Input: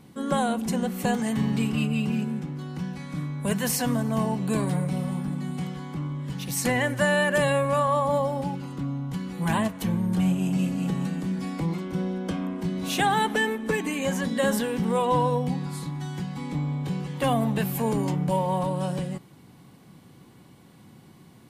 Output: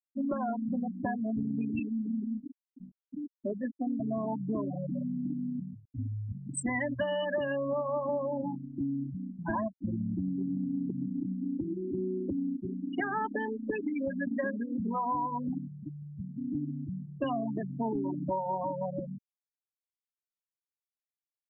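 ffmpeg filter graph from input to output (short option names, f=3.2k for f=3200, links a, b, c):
-filter_complex "[0:a]asettb=1/sr,asplit=3[a][b][c];[a]atrim=end=1.794[d];[b]atrim=start=1.79:end=4,asetpts=PTS-STARTPTS,afade=t=in:d=0.004:c=qsin,afade=t=out:st=2.206:d=0.004:c=qsin,highpass=f=220:w=0.5412,highpass=f=220:w=1.3066,highshelf=f=2.1k:g=-8.5,bandreject=f=680:w=5.8[e];[c]atrim=start=3.996[f];[d][e]acrossfade=d=0.004:c1=hsin:c2=qsin[g];[g][f]acrossfade=d=0.004:c1=qsin:c2=hsin,asettb=1/sr,asplit=3[h][i][j];[h]atrim=end=5.744[k];[i]atrim=start=5.74:end=6.32,asetpts=PTS-STARTPTS,afade=t=in:d=0.004:c=qsin,afade=t=out:st=0.576:d=0.004:c=qsin,lowshelf=f=110:g=-7,afreqshift=-41,highpass=64[l];[j]atrim=start=6.316[m];[k][l]acrossfade=d=0.004:c1=hsin:c2=qsin[n];[n][m]acrossfade=d=0.004:c1=qsin:c2=hsin,asettb=1/sr,asplit=3[o][p][q];[o]atrim=end=12.564[r];[p]atrim=start=12.56:end=15.56,asetpts=PTS-STARTPTS,afade=t=in:d=0.004:c=qsin,afade=t=out:st=2.996:d=0.004:c=qsin,lowpass=3.1k,bandreject=f=380.4:t=h:w=4,bandreject=f=760.8:t=h:w=4,bandreject=f=1.1412k:t=h:w=4,bandreject=f=1.5216k:t=h:w=4,bandreject=f=1.902k:t=h:w=4,bandreject=f=2.2824k:t=h:w=4,bandreject=f=2.6628k:t=h:w=4,bandreject=f=3.0432k:t=h:w=4,bandreject=f=3.4236k:t=h:w=4,bandreject=f=3.804k:t=h:w=4,bandreject=f=4.1844k:t=h:w=4,bandreject=f=4.5648k:t=h:w=4,bandreject=f=4.9452k:t=h:w=4,bandreject=f=5.3256k:t=h:w=4,bandreject=f=5.706k:t=h:w=4,bandreject=f=6.0864k:t=h:w=4,bandreject=f=6.4668k:t=h:w=4,bandreject=f=6.8472k:t=h:w=4,bandreject=f=7.2276k:t=h:w=4,bandreject=f=7.608k:t=h:w=4,bandreject=f=7.9884k:t=h:w=4,bandreject=f=8.3688k:t=h:w=4,bandreject=f=8.7492k:t=h:w=4,bandreject=f=9.1296k:t=h:w=4,bandreject=f=9.51k:t=h:w=4,bandreject=f=9.8904k:t=h:w=4,bandreject=f=10.2708k:t=h:w=4,bandreject=f=10.6512k:t=h:w=4,bandreject=f=11.0316k:t=h:w=4,bandreject=f=11.412k:t=h:w=4,bandreject=f=11.7924k:t=h:w=4,bandreject=f=12.1728k:t=h:w=4,bandreject=f=12.5532k:t=h:w=4,bandreject=f=12.9336k:t=h:w=4,aeval=exprs='sgn(val(0))*max(abs(val(0))-0.00944,0)':c=same[s];[q]atrim=start=15.556[t];[r][s]acrossfade=d=0.004:c1=hsin:c2=qsin[u];[u][t]acrossfade=d=0.004:c1=qsin:c2=hsin,afftfilt=real='re*gte(hypot(re,im),0.126)':imag='im*gte(hypot(re,im),0.126)':win_size=1024:overlap=0.75,aecho=1:1:3.1:0.86,acompressor=threshold=-29dB:ratio=6"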